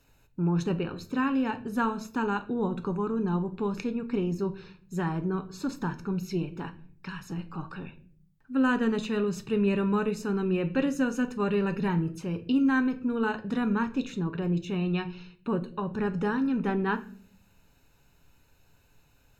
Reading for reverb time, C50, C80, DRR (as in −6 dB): 0.50 s, 15.5 dB, 20.0 dB, 7.5 dB